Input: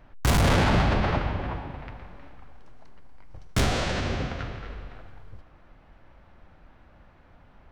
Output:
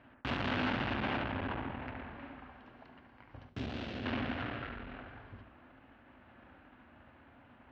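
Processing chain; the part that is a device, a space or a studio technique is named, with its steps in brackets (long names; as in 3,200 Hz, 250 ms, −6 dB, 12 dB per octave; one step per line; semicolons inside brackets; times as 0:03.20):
analogue delay pedal into a guitar amplifier (bucket-brigade delay 71 ms, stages 1,024, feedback 35%, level −5 dB; tube saturation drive 32 dB, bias 0.65; loudspeaker in its box 100–3,700 Hz, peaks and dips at 170 Hz −9 dB, 250 Hz +9 dB, 470 Hz −3 dB, 1,600 Hz +4 dB, 2,800 Hz +5 dB)
0:03.49–0:04.06: parametric band 1,500 Hz −11.5 dB 2.7 octaves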